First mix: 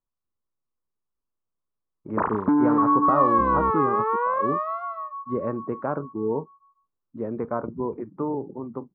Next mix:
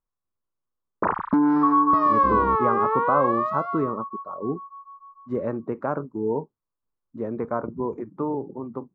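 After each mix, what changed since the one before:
background: entry −1.15 s
master: remove high-frequency loss of the air 280 metres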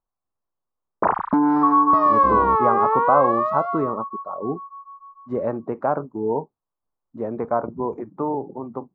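master: add parametric band 740 Hz +9 dB 0.79 octaves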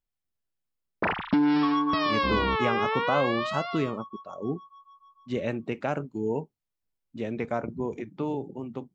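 master: remove drawn EQ curve 160 Hz 0 dB, 380 Hz +5 dB, 730 Hz +9 dB, 1,100 Hz +13 dB, 2,900 Hz −24 dB, 5,900 Hz −19 dB

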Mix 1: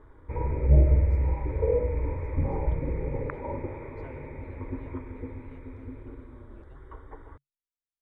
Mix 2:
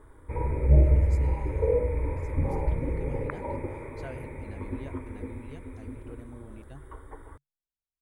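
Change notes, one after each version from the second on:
speech +9.5 dB
master: remove high-frequency loss of the air 160 metres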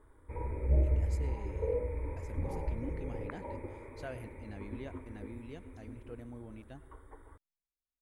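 background −8.5 dB
master: add parametric band 140 Hz −7.5 dB 0.24 octaves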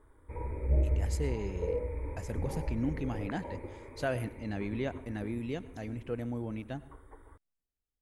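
speech +11.0 dB

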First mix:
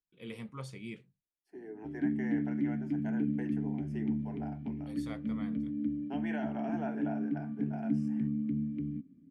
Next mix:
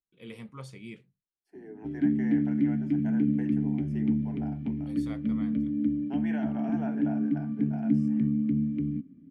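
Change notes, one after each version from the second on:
background +6.5 dB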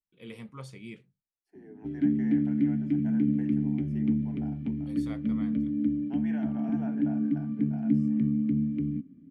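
second voice −5.0 dB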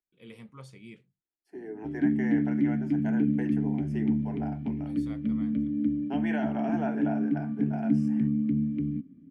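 first voice −4.0 dB
second voice +11.0 dB

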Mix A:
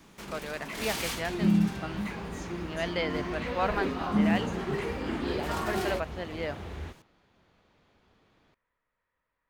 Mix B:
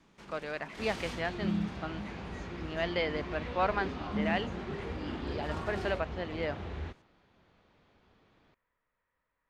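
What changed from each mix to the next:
first sound −8.5 dB
master: add high-frequency loss of the air 67 metres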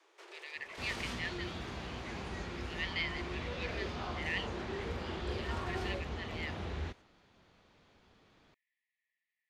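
speech: add linear-phase brick-wall high-pass 1,700 Hz
first sound: add Butterworth high-pass 330 Hz 96 dB per octave
second sound: add high-shelf EQ 4,900 Hz +12 dB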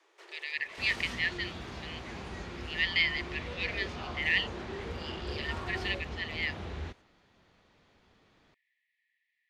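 speech +9.5 dB

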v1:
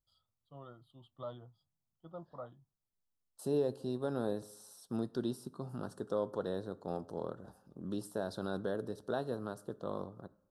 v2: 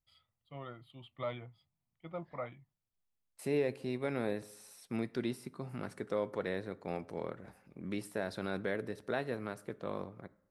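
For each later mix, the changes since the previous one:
first voice +5.0 dB
master: remove Butterworth band-reject 2,200 Hz, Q 1.1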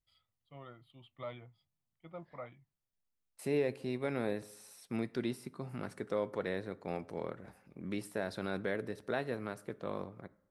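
first voice −5.0 dB

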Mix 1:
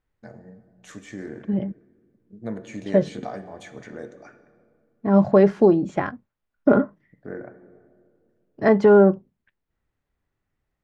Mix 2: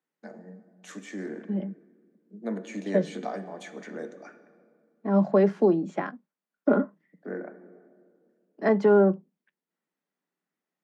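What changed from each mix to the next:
second voice −5.5 dB
master: add Butterworth high-pass 160 Hz 96 dB per octave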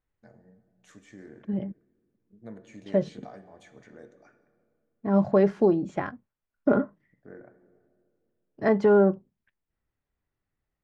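first voice −11.5 dB
master: remove Butterworth high-pass 160 Hz 96 dB per octave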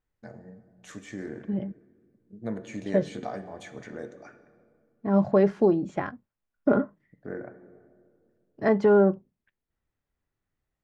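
first voice +10.0 dB

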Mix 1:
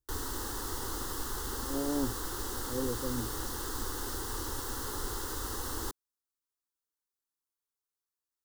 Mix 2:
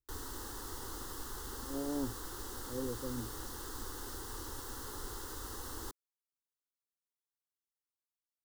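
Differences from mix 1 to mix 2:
speech −4.5 dB
background −7.0 dB

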